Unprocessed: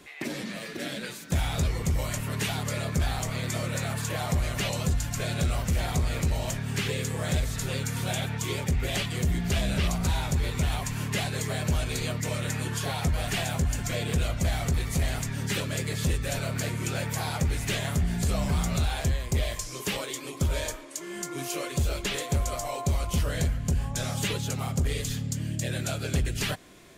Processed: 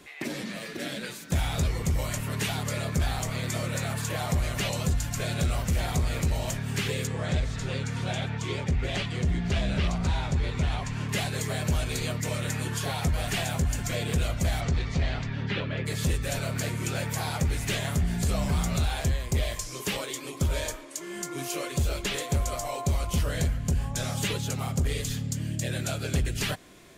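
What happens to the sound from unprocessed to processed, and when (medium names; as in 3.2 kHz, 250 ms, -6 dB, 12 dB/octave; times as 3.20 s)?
7.07–11.09 s: distance through air 91 m
14.60–15.85 s: low-pass 6.4 kHz -> 3 kHz 24 dB/octave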